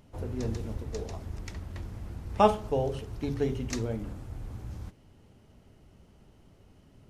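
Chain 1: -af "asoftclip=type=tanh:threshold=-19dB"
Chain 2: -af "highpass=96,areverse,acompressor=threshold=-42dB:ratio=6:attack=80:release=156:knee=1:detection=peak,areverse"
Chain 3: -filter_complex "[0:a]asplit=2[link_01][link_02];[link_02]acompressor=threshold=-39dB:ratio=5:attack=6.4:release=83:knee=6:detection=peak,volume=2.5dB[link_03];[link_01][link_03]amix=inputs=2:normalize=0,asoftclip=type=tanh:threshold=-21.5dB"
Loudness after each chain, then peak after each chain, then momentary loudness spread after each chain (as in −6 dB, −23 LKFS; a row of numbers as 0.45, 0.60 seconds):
−35.0, −42.5, −33.0 LKFS; −19.0, −24.0, −21.5 dBFS; 13, 20, 22 LU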